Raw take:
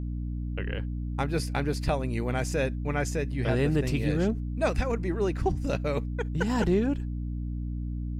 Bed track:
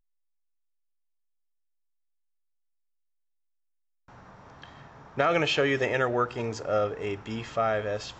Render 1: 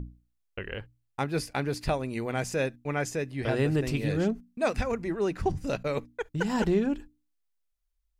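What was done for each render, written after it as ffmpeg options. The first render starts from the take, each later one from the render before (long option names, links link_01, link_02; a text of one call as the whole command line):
ffmpeg -i in.wav -af "bandreject=frequency=60:width_type=h:width=6,bandreject=frequency=120:width_type=h:width=6,bandreject=frequency=180:width_type=h:width=6,bandreject=frequency=240:width_type=h:width=6,bandreject=frequency=300:width_type=h:width=6" out.wav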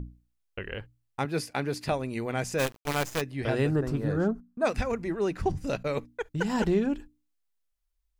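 ffmpeg -i in.wav -filter_complex "[0:a]asettb=1/sr,asplit=3[link_01][link_02][link_03];[link_01]atrim=end=1.254[link_04];[link_02]atrim=start=1.25:end=1.92,asetpts=PTS-STARTPTS,afade=type=in:duration=0.004:curve=qsin,afade=type=out:start_time=0.666:duration=0.004:curve=qsin,highpass=120[link_05];[link_03]atrim=start=1.916[link_06];[link_04][link_05]acrossfade=duration=0.004:curve1=hsin:curve2=qsin[link_07];[link_07][link_06]acrossfade=duration=0.004:curve1=qsin:curve2=hsin,asplit=3[link_08][link_09][link_10];[link_08]afade=type=out:start_time=2.58:duration=0.02[link_11];[link_09]acrusher=bits=5:dc=4:mix=0:aa=0.000001,afade=type=in:start_time=2.58:duration=0.02,afade=type=out:start_time=3.2:duration=0.02[link_12];[link_10]afade=type=in:start_time=3.2:duration=0.02[link_13];[link_11][link_12][link_13]amix=inputs=3:normalize=0,asplit=3[link_14][link_15][link_16];[link_14]afade=type=out:start_time=3.7:duration=0.02[link_17];[link_15]highshelf=frequency=1800:width_type=q:width=3:gain=-9,afade=type=in:start_time=3.7:duration=0.02,afade=type=out:start_time=4.64:duration=0.02[link_18];[link_16]afade=type=in:start_time=4.64:duration=0.02[link_19];[link_17][link_18][link_19]amix=inputs=3:normalize=0" out.wav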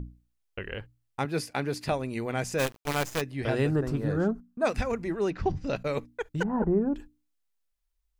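ffmpeg -i in.wav -filter_complex "[0:a]asettb=1/sr,asplit=3[link_01][link_02][link_03];[link_01]atrim=end=5.304[link_04];[link_02]atrim=start=5.3:end=5.76,asetpts=PTS-STARTPTS,afade=type=in:duration=0.004:curve=qsin,afade=type=out:start_time=0.456:duration=0.004:curve=qsin,lowpass=frequency=5500:width=0.5412,lowpass=frequency=5500:width=1.3066[link_05];[link_03]atrim=start=5.756[link_06];[link_04][link_05]acrossfade=duration=0.004:curve1=hsin:curve2=qsin[link_07];[link_07][link_06]acrossfade=duration=0.004:curve1=qsin:curve2=hsin,asettb=1/sr,asplit=3[link_08][link_09][link_10];[link_08]atrim=end=6.434[link_11];[link_09]atrim=start=6.43:end=6.96,asetpts=PTS-STARTPTS,afade=type=in:duration=0.004:curve=qsin,afade=type=out:start_time=0.526:duration=0.004:curve=qsin,lowpass=frequency=1200:width=0.5412,lowpass=frequency=1200:width=1.3066[link_12];[link_10]atrim=start=6.956[link_13];[link_11][link_12]acrossfade=duration=0.004:curve1=hsin:curve2=qsin[link_14];[link_14][link_13]acrossfade=duration=0.004:curve1=qsin:curve2=hsin" out.wav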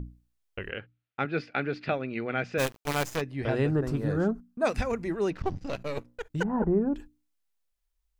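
ffmpeg -i in.wav -filter_complex "[0:a]asettb=1/sr,asplit=3[link_01][link_02][link_03];[link_01]atrim=end=0.714[link_04];[link_02]atrim=start=0.71:end=2.58,asetpts=PTS-STARTPTS,afade=type=in:duration=0.004:curve=qsin,afade=type=out:start_time=1.866:duration=0.004:curve=qsin,highpass=140,equalizer=frequency=970:width_type=q:width=4:gain=-9,equalizer=frequency=1400:width_type=q:width=4:gain=7,equalizer=frequency=2400:width_type=q:width=4:gain=4,lowpass=frequency=3700:width=0.5412,lowpass=frequency=3700:width=1.3066[link_05];[link_03]atrim=start=2.576[link_06];[link_04][link_05]acrossfade=duration=0.004:curve1=hsin:curve2=qsin[link_07];[link_07][link_06]acrossfade=duration=0.004:curve1=qsin:curve2=hsin,asplit=3[link_08][link_09][link_10];[link_08]afade=type=out:start_time=3.15:duration=0.02[link_11];[link_09]aemphasis=mode=reproduction:type=50kf,afade=type=in:start_time=3.15:duration=0.02,afade=type=out:start_time=3.82:duration=0.02[link_12];[link_10]afade=type=in:start_time=3.82:duration=0.02[link_13];[link_11][link_12][link_13]amix=inputs=3:normalize=0,asettb=1/sr,asplit=3[link_14][link_15][link_16];[link_14]atrim=end=5.334[link_17];[link_15]atrim=start=5.33:end=6.33,asetpts=PTS-STARTPTS,afade=type=in:duration=0.004:curve=qsin,afade=type=out:start_time=0.996:duration=0.004:curve=qsin,aeval=exprs='if(lt(val(0),0),0.251*val(0),val(0))':channel_layout=same[link_18];[link_16]atrim=start=6.326[link_19];[link_17][link_18]acrossfade=duration=0.004:curve1=hsin:curve2=qsin[link_20];[link_20][link_19]acrossfade=duration=0.004:curve1=qsin:curve2=hsin" out.wav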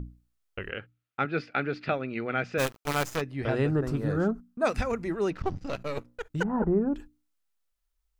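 ffmpeg -i in.wav -af "equalizer=frequency=1300:width=6.3:gain=5" out.wav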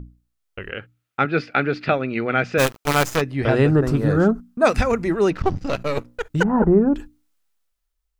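ffmpeg -i in.wav -af "dynaudnorm=framelen=120:gausssize=13:maxgain=10dB" out.wav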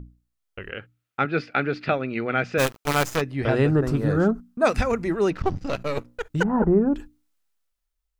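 ffmpeg -i in.wav -af "volume=-3.5dB" out.wav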